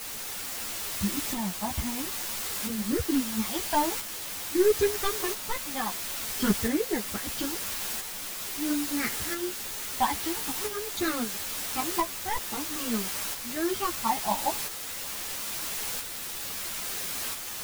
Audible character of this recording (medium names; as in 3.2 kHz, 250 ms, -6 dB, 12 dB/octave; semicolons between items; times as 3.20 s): phasing stages 12, 0.47 Hz, lowest notch 430–1000 Hz; a quantiser's noise floor 6-bit, dither triangular; tremolo saw up 0.75 Hz, depth 45%; a shimmering, thickened sound